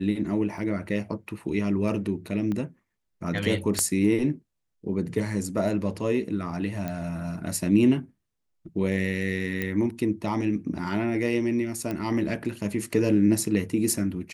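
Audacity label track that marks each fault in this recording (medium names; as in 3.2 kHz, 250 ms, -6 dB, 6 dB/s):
0.580000	0.580000	dropout 2.4 ms
2.520000	2.520000	pop -20 dBFS
3.790000	3.790000	pop -10 dBFS
6.880000	6.880000	pop -18 dBFS
9.620000	9.620000	pop -15 dBFS
11.910000	11.910000	pop -18 dBFS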